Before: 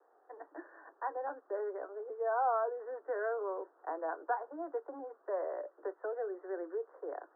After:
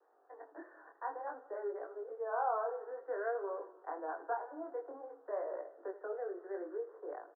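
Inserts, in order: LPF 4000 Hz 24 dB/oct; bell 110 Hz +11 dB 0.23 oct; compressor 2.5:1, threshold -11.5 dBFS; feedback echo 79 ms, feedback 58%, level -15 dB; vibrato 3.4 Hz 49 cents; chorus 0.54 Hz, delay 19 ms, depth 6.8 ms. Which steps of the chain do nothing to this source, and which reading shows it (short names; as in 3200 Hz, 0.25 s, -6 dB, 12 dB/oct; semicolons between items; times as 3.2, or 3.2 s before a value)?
LPF 4000 Hz: input band ends at 1800 Hz; bell 110 Hz: input band starts at 270 Hz; compressor, threshold -11.5 dBFS: input peak -22.5 dBFS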